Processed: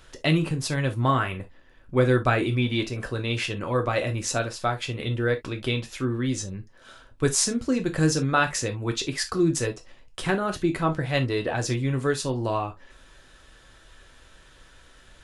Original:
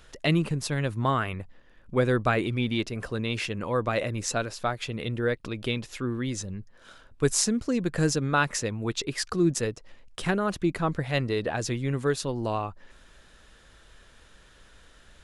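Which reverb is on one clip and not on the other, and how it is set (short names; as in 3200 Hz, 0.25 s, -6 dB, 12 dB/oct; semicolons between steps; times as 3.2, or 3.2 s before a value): non-linear reverb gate 90 ms falling, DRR 4 dB; gain +1 dB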